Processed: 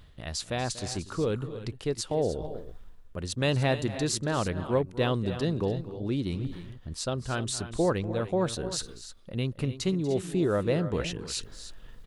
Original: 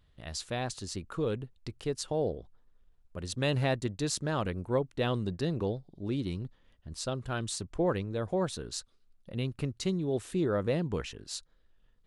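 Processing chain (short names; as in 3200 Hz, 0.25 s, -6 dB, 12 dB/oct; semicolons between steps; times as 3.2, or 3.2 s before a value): reverse; upward compressor, threshold -32 dBFS; reverse; tapped delay 0.24/0.286/0.304 s -16/-18.5/-13.5 dB; gain +3 dB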